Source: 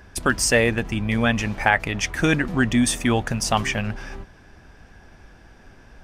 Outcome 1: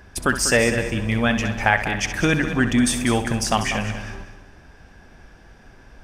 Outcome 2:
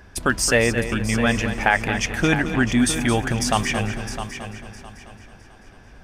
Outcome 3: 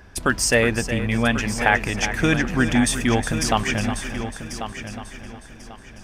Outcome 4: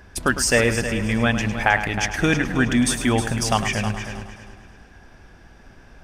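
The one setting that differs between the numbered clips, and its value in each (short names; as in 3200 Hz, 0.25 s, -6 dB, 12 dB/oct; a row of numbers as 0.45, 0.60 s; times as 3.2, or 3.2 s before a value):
multi-head echo, time: 65, 220, 364, 105 ms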